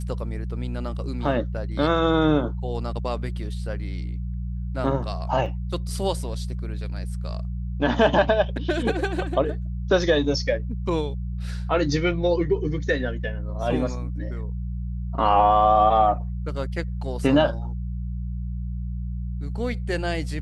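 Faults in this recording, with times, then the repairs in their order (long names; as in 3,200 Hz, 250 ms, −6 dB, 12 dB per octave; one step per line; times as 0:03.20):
mains hum 60 Hz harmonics 3 −29 dBFS
0:05.46: drop-out 2.3 ms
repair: hum removal 60 Hz, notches 3
repair the gap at 0:05.46, 2.3 ms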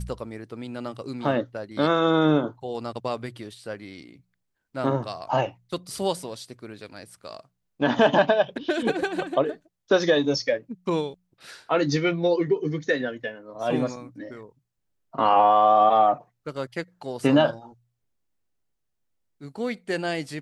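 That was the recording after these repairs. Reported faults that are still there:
none of them is left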